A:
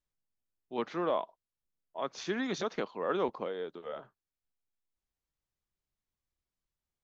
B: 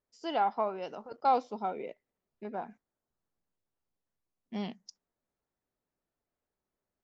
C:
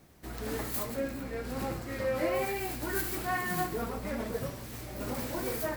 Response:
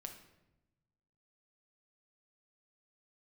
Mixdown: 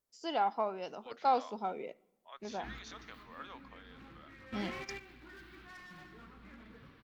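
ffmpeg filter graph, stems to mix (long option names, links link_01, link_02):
-filter_complex "[0:a]highpass=1300,adelay=300,volume=-8.5dB,asplit=2[link_01][link_02];[link_02]volume=-22.5dB[link_03];[1:a]aemphasis=mode=production:type=cd,volume=-3.5dB,asplit=3[link_04][link_05][link_06];[link_05]volume=-12.5dB[link_07];[2:a]firequalizer=gain_entry='entry(310,0);entry(560,-13);entry(1200,4);entry(3500,3);entry(7300,-27);entry(14000,-23)':delay=0.05:min_phase=1,asoftclip=type=hard:threshold=-32.5dB,adelay=2400,volume=-7.5dB,asplit=3[link_08][link_09][link_10];[link_09]volume=-13dB[link_11];[link_10]volume=-20dB[link_12];[link_06]apad=whole_len=364690[link_13];[link_08][link_13]sidechaingate=range=-14dB:threshold=-57dB:ratio=16:detection=peak[link_14];[3:a]atrim=start_sample=2205[link_15];[link_07][link_11]amix=inputs=2:normalize=0[link_16];[link_16][link_15]afir=irnorm=-1:irlink=0[link_17];[link_03][link_12]amix=inputs=2:normalize=0,aecho=0:1:203|406|609|812:1|0.31|0.0961|0.0298[link_18];[link_01][link_04][link_14][link_17][link_18]amix=inputs=5:normalize=0"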